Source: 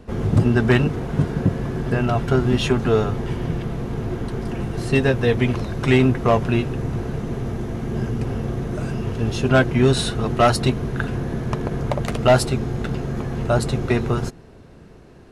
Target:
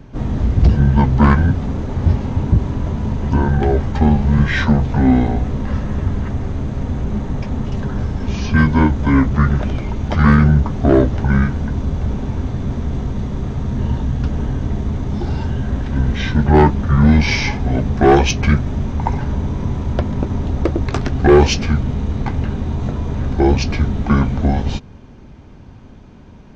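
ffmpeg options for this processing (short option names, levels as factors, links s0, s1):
-af "asetrate=25442,aresample=44100,acontrast=38"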